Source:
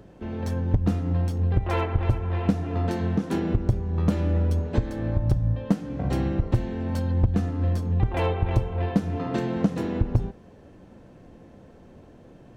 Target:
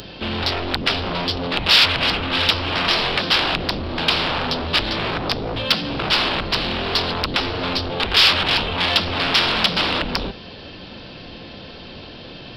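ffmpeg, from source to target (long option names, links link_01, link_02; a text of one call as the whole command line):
ffmpeg -i in.wav -af "aresample=11025,aeval=exprs='0.251*sin(PI/2*7.08*val(0)/0.251)':channel_layout=same,aresample=44100,aexciter=amount=4.9:drive=9.2:freq=2900,equalizer=frequency=2000:width=0.61:gain=11.5,volume=-12dB" out.wav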